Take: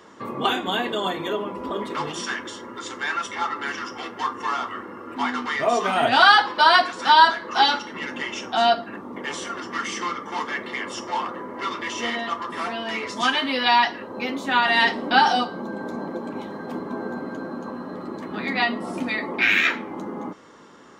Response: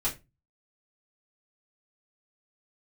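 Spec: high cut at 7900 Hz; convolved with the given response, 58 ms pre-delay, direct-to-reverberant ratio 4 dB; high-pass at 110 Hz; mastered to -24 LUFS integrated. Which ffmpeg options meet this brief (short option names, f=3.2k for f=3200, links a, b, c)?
-filter_complex "[0:a]highpass=110,lowpass=7.9k,asplit=2[a][b];[1:a]atrim=start_sample=2205,adelay=58[c];[b][c]afir=irnorm=-1:irlink=0,volume=-10.5dB[d];[a][d]amix=inputs=2:normalize=0,volume=-2.5dB"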